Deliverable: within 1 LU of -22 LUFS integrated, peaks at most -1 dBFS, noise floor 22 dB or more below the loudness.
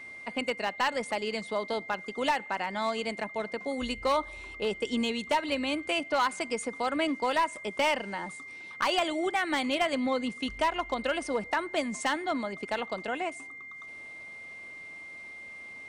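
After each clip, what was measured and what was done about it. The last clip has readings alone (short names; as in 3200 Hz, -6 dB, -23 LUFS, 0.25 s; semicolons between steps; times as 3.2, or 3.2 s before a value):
clipped 0.4%; flat tops at -19.5 dBFS; steady tone 2100 Hz; tone level -42 dBFS; loudness -30.5 LUFS; peak -19.5 dBFS; loudness target -22.0 LUFS
-> clip repair -19.5 dBFS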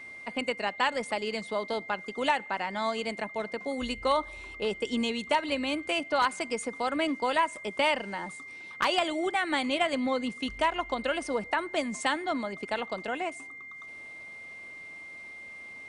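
clipped 0.0%; steady tone 2100 Hz; tone level -42 dBFS
-> notch 2100 Hz, Q 30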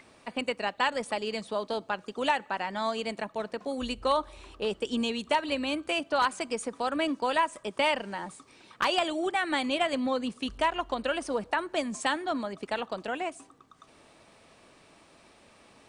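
steady tone none; loudness -30.5 LUFS; peak -10.5 dBFS; loudness target -22.0 LUFS
-> gain +8.5 dB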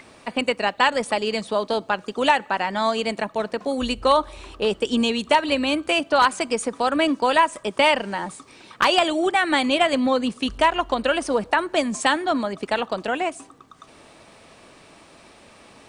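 loudness -22.0 LUFS; peak -2.0 dBFS; noise floor -50 dBFS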